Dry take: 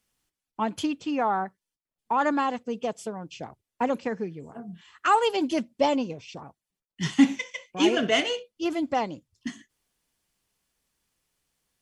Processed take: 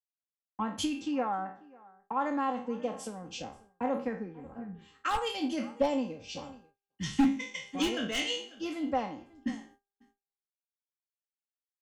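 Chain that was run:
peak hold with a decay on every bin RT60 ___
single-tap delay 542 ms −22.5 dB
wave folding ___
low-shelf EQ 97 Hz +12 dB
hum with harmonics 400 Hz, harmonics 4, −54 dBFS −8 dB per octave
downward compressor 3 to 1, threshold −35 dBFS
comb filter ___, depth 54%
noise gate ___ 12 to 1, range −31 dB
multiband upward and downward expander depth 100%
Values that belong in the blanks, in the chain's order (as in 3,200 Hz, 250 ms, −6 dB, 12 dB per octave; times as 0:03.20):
0.43 s, −13 dBFS, 3.8 ms, −51 dBFS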